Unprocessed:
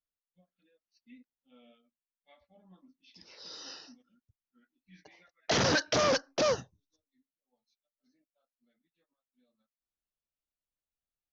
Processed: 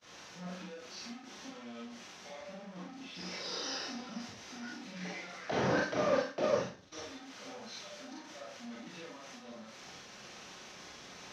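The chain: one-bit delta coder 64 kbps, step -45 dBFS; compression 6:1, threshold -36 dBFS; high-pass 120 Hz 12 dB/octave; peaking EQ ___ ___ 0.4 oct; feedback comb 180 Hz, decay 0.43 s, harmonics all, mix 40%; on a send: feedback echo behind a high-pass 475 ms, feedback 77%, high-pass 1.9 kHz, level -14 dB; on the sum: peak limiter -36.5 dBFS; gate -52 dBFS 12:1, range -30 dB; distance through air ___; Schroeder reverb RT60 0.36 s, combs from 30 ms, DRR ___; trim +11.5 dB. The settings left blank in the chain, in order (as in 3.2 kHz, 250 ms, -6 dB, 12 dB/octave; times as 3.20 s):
6 kHz, +10.5 dB, 230 m, -3 dB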